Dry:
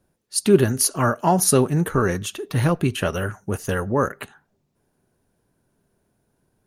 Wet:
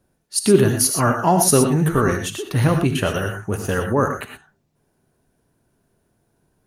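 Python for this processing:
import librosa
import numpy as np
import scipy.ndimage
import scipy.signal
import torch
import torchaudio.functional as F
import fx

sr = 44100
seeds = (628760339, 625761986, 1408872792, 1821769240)

y = fx.rev_gated(x, sr, seeds[0], gate_ms=140, shape='rising', drr_db=5.0)
y = y * 10.0 ** (1.5 / 20.0)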